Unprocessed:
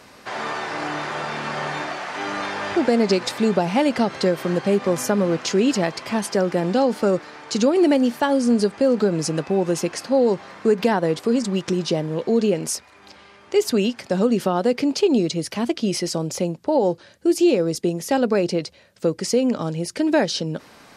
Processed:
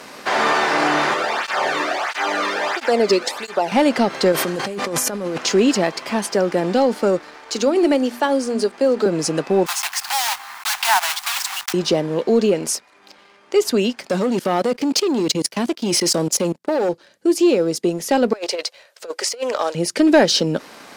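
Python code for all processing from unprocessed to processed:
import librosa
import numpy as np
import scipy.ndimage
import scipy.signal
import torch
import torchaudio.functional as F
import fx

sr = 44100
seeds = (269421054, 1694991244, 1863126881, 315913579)

y = fx.chain(x, sr, fx.highpass(hz=270.0, slope=6),
    fx.flanger_cancel(hz=1.5, depth_ms=1.4), at=(1.14, 3.72))
y = fx.chain(y, sr, fx.high_shelf(hz=5900.0, db=10.0),
    fx.over_compress(threshold_db=-27.0, ratio=-1.0), at=(4.32, 5.38))
y = fx.chain(y, sr, fx.highpass(hz=240.0, slope=24),
    fx.hum_notches(base_hz=60, count=6), at=(7.35, 9.06))
y = fx.chain(y, sr, fx.block_float(bits=3),
    fx.steep_highpass(hz=750.0, slope=72), at=(9.66, 11.74))
y = fx.chain(y, sr, fx.high_shelf(hz=4900.0, db=5.0),
    fx.leveller(passes=2),
    fx.level_steps(step_db=20), at=(14.09, 16.89))
y = fx.chain(y, sr, fx.highpass(hz=520.0, slope=24),
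    fx.over_compress(threshold_db=-29.0, ratio=-0.5),
    fx.doppler_dist(depth_ms=0.11), at=(18.33, 19.75))
y = scipy.signal.sosfilt(scipy.signal.butter(2, 210.0, 'highpass', fs=sr, output='sos'), y)
y = fx.rider(y, sr, range_db=10, speed_s=2.0)
y = fx.leveller(y, sr, passes=1)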